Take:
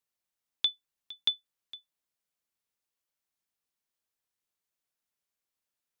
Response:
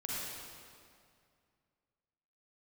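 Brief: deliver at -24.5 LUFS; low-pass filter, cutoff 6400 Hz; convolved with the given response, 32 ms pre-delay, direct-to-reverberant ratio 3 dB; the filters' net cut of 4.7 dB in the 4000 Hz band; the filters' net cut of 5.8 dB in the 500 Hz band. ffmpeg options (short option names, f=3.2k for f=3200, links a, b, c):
-filter_complex "[0:a]lowpass=6.4k,equalizer=f=500:t=o:g=-7.5,equalizer=f=4k:t=o:g=-5,asplit=2[a][b];[1:a]atrim=start_sample=2205,adelay=32[c];[b][c]afir=irnorm=-1:irlink=0,volume=-6dB[d];[a][d]amix=inputs=2:normalize=0,volume=13dB"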